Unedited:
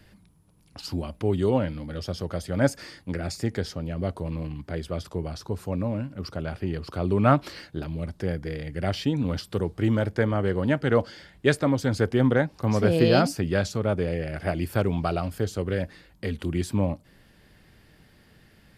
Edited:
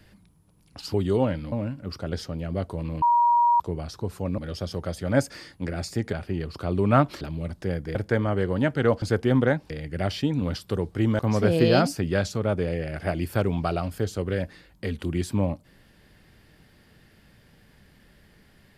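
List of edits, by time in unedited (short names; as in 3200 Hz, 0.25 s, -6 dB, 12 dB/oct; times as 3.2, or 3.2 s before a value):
0.94–1.27 cut
1.85–3.6 swap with 5.85–6.46
4.49–5.07 bleep 952 Hz -16 dBFS
7.54–7.79 cut
8.53–10.02 move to 12.59
11.09–11.91 cut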